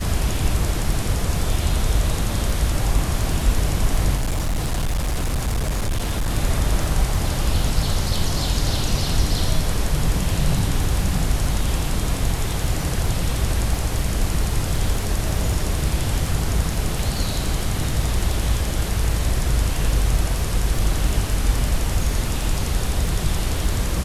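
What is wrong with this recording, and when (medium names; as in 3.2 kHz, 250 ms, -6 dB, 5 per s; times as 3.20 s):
crackle 14 per s -24 dBFS
4.16–6.31 s: clipped -18 dBFS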